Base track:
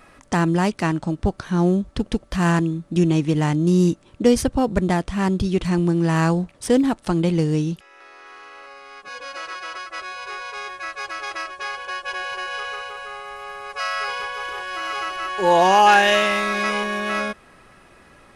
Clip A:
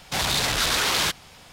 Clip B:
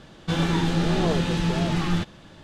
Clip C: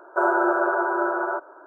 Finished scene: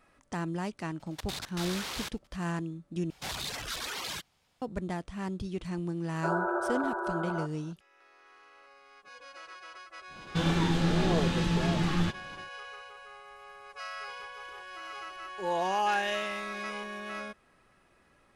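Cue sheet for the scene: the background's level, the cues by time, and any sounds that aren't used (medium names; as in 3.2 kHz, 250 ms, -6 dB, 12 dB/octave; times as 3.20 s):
base track -15 dB
0.99 s: add A -14 dB + level held to a coarse grid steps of 24 dB
3.10 s: replace with A -11.5 dB + reverb removal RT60 1.6 s
6.07 s: add C -10 dB
10.07 s: add B -4 dB, fades 0.10 s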